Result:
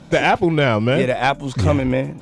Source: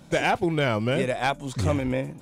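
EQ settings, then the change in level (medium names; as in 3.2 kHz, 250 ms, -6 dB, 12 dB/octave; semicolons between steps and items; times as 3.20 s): distance through air 61 m; +7.5 dB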